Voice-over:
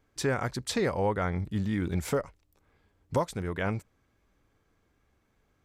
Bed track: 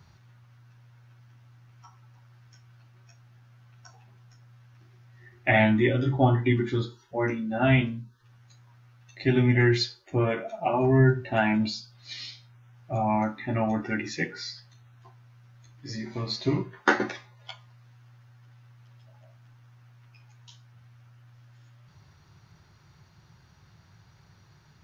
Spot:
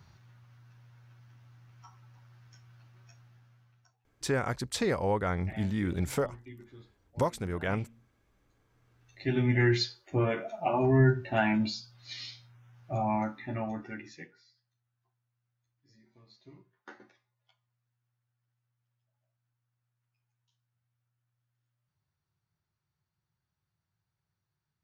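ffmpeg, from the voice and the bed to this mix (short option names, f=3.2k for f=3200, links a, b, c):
-filter_complex "[0:a]adelay=4050,volume=-1dB[a];[1:a]volume=20dB,afade=t=out:st=3.17:d=0.79:silence=0.0707946,afade=t=in:st=8.58:d=1.16:silence=0.0794328,afade=t=out:st=12.87:d=1.56:silence=0.0530884[b];[a][b]amix=inputs=2:normalize=0"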